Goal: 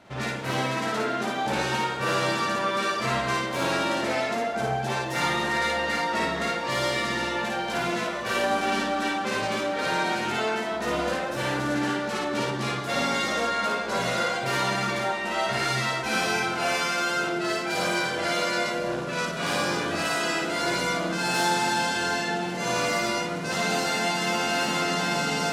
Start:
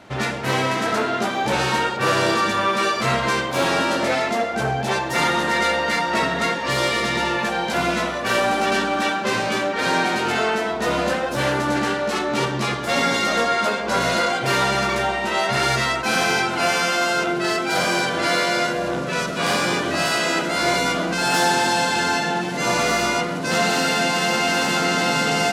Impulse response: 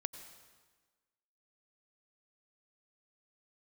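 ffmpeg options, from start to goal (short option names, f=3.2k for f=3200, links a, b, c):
-filter_complex "[0:a]asplit=2[a][b];[1:a]atrim=start_sample=2205,adelay=55[c];[b][c]afir=irnorm=-1:irlink=0,volume=-0.5dB[d];[a][d]amix=inputs=2:normalize=0,volume=-8dB"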